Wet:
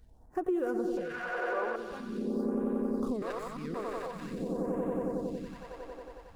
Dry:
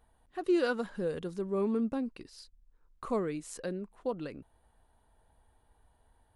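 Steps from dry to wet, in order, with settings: median filter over 15 samples; swelling echo 91 ms, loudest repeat 5, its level -7 dB; compressor 12:1, threshold -37 dBFS, peak gain reduction 14.5 dB; 0.97–1.76 band shelf 1100 Hz +14.5 dB 2.7 oct; limiter -31.5 dBFS, peak gain reduction 9 dB; phaser stages 2, 0.46 Hz, lowest notch 150–4300 Hz; 3.22–3.74 reverse; gain +9 dB

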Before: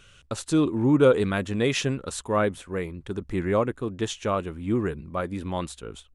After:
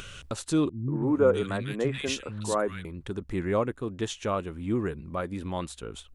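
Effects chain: upward compressor, threshold -28 dBFS; 0.69–2.85 three bands offset in time lows, mids, highs 0.19/0.34 s, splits 210/1900 Hz; gain -3 dB

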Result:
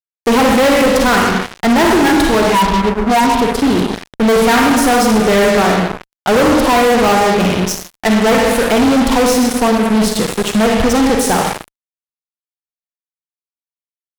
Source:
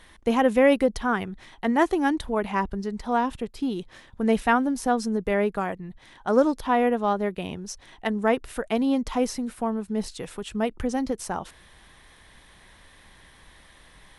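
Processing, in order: 2.55–3.34 spectral contrast raised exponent 2.7; Schroeder reverb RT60 1.1 s, DRR 2 dB; fuzz box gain 32 dB, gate -35 dBFS; gain +4.5 dB

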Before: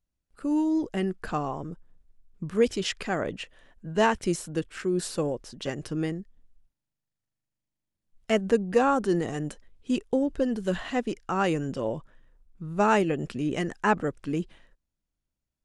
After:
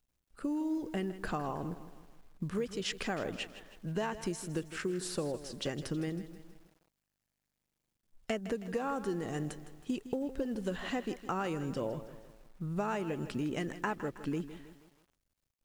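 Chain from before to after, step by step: compressor 16:1, threshold -30 dBFS, peak gain reduction 14.5 dB; companded quantiser 8-bit; lo-fi delay 0.16 s, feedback 55%, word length 9-bit, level -13 dB; gain -1 dB

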